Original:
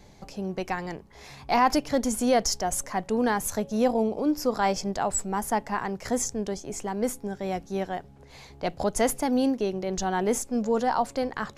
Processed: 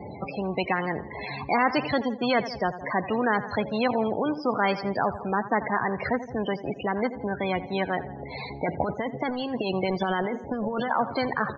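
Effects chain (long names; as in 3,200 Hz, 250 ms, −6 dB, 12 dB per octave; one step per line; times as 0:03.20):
high-pass filter 90 Hz 24 dB per octave
0:08.64–0:10.91: compressor whose output falls as the input rises −30 dBFS, ratio −1
spectral peaks only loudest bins 32
Butterworth low-pass 4,100 Hz 72 dB per octave
repeating echo 84 ms, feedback 46%, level −23 dB
every bin compressed towards the loudest bin 2 to 1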